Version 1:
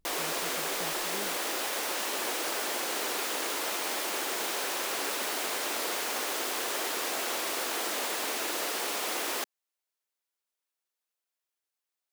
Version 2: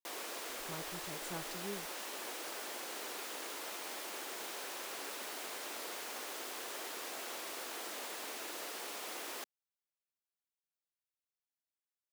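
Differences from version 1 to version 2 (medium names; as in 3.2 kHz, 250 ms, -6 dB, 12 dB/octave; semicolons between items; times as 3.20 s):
speech: entry +0.50 s; background -11.5 dB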